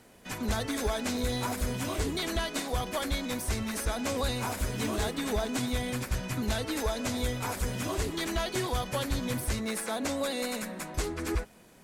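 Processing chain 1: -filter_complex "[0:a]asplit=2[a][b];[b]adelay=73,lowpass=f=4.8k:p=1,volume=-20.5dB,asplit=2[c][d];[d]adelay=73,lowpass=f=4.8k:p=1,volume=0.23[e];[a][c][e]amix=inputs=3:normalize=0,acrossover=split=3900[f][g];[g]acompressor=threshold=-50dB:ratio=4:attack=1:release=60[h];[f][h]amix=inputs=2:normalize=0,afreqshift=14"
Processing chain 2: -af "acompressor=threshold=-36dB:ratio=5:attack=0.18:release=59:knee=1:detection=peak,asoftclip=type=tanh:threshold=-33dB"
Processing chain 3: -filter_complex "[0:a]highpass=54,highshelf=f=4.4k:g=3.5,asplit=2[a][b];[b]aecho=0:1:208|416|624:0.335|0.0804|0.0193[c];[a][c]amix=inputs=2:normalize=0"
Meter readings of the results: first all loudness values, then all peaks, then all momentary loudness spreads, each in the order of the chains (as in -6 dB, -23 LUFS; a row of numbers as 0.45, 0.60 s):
-32.5, -42.0, -31.0 LUFS; -17.5, -34.5, -16.5 dBFS; 3, 1, 3 LU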